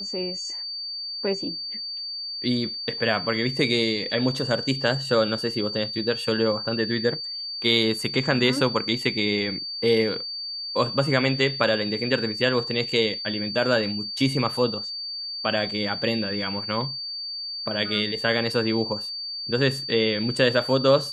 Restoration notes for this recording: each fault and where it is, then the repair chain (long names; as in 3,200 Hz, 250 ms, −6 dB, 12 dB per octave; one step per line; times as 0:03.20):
whistle 4,600 Hz −30 dBFS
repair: notch filter 4,600 Hz, Q 30